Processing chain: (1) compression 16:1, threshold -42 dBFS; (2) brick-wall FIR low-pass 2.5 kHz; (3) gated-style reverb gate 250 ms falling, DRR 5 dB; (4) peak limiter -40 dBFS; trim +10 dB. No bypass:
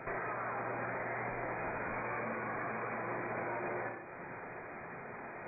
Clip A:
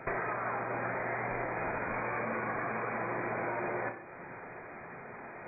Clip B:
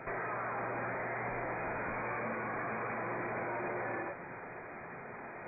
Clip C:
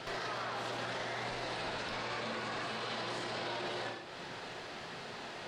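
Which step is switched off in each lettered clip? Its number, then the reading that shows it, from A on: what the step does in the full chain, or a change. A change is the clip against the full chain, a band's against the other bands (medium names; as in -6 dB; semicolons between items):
4, mean gain reduction 2.5 dB; 1, mean gain reduction 10.0 dB; 2, momentary loudness spread change -1 LU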